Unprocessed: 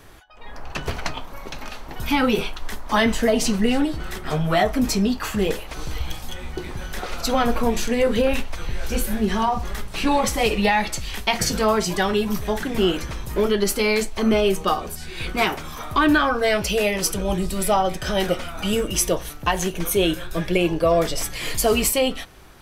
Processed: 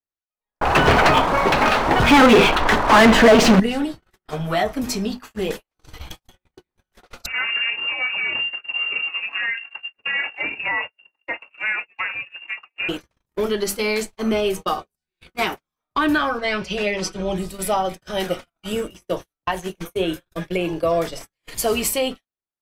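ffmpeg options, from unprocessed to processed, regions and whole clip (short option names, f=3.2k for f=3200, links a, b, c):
-filter_complex "[0:a]asettb=1/sr,asplit=3[a][b][c];[a]atrim=end=0.614[d];[b]atrim=start=0.61:end=3.6,asetpts=PTS-STARTPTS,afade=t=in:d=0.004:c=qsin,afade=t=out:st=2.986:d=0.004:c=qsin,aemphasis=mode=reproduction:type=bsi,asplit=2[e][f];[f]highpass=f=720:p=1,volume=36dB,asoftclip=type=tanh:threshold=-0.5dB[g];[e][g]amix=inputs=2:normalize=0,lowpass=f=1.9k:p=1,volume=-6dB,aeval=exprs='sgn(val(0))*max(abs(val(0))-0.0282,0)':c=same[h];[c]atrim=start=3.596[i];[d][h]acrossfade=d=0.004:c1=hsin:c2=qsin[j];[j][i]acrossfade=d=0.004:c1=qsin:c2=hsin,asettb=1/sr,asplit=3[k][l][m];[k]atrim=end=7.264[n];[l]atrim=start=7.26:end=12.89,asetpts=PTS-STARTPTS,afade=t=in:d=0.004:c=qsin,afade=t=out:st=5.626:d=0.004:c=qsin,asoftclip=type=hard:threshold=-16dB,equalizer=f=280:w=1.3:g=-8,lowpass=f=2.4k:t=q:w=0.5098,lowpass=f=2.4k:t=q:w=0.6013,lowpass=f=2.4k:t=q:w=0.9,lowpass=f=2.4k:t=q:w=2.563,afreqshift=-2800[o];[m]atrim=start=12.886[p];[n][o]acrossfade=d=0.004:c1=hsin:c2=qsin[q];[q][p]acrossfade=d=0.004:c1=qsin:c2=hsin,asettb=1/sr,asplit=3[r][s][t];[r]atrim=end=16.384[u];[s]atrim=start=16.38:end=17.36,asetpts=PTS-STARTPTS,afade=t=in:d=0.004:c=qsin,afade=t=out:st=0.976:d=0.004:c=qsin,lowpass=4.9k,aecho=1:1:5.4:0.6,atrim=end_sample=43218[v];[t]atrim=start=17.356[w];[u][v]acrossfade=d=0.004:c1=hsin:c2=qsin[x];[x][w]acrossfade=d=0.004:c1=qsin:c2=hsin,asettb=1/sr,asplit=3[y][z][aa];[y]atrim=end=18.724[ab];[z]atrim=start=18.72:end=21.51,asetpts=PTS-STARTPTS,afade=t=in:d=0.004:c=qsin,afade=t=out:st=2.786:d=0.004:c=qsin,acrossover=split=2500[ac][ad];[ad]acompressor=threshold=-31dB:ratio=4:attack=1:release=60[ae];[ac][ae]amix=inputs=2:normalize=0,bandreject=f=50:t=h:w=6,bandreject=f=100:t=h:w=6,bandreject=f=150:t=h:w=6,bandreject=f=200:t=h:w=6,bandreject=f=250:t=h:w=6,bandreject=f=300:t=h:w=6,bandreject=f=350:t=h:w=6,bandreject=f=400:t=h:w=6[af];[aa]atrim=start=21.506[ag];[ab][af]acrossfade=d=0.004:c1=hsin:c2=qsin[ah];[ah][ag]acrossfade=d=0.004:c1=qsin:c2=hsin,bandreject=f=50:t=h:w=6,bandreject=f=100:t=h:w=6,bandreject=f=150:t=h:w=6,bandreject=f=200:t=h:w=6,bandreject=f=250:t=h:w=6,agate=range=-50dB:threshold=-24dB:ratio=16:detection=peak,lowshelf=f=75:g=-9.5,volume=-1.5dB"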